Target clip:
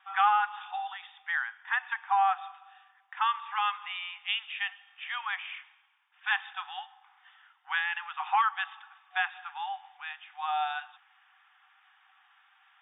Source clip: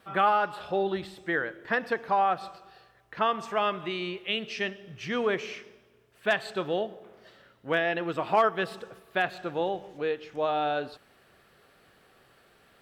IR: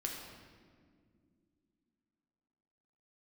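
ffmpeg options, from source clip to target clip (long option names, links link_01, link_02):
-af "afftfilt=real='re*between(b*sr/4096,740,3700)':imag='im*between(b*sr/4096,740,3700)':win_size=4096:overlap=0.75"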